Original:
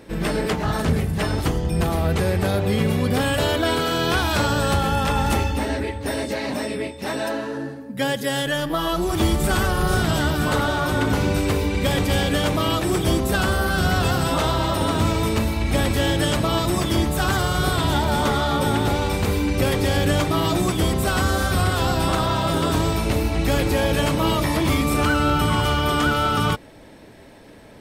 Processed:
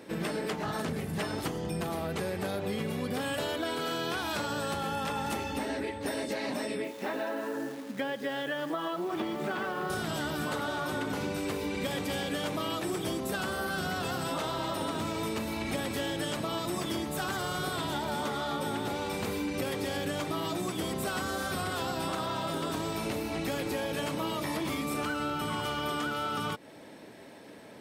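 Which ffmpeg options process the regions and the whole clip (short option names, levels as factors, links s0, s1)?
-filter_complex "[0:a]asettb=1/sr,asplit=3[s0][s1][s2];[s0]atrim=end=6.844[s3];[s1]atrim=start=6.84:end=9.9,asetpts=PTS-STARTPTS,afade=t=in:d=0.004:c=qsin,afade=t=out:st=3.056:d=0.004:c=qsin,highpass=200,lowpass=2700,acrusher=bits=8:dc=4:mix=0:aa=0.000001[s4];[s2]atrim=start=9.896[s5];[s3][s4]acrossfade=d=0.004:c1=hsin:c2=qsin[s6];[s6][s5]acrossfade=d=0.004:c1=qsin:c2=hsin,highpass=170,acompressor=threshold=0.0447:ratio=6,volume=0.708"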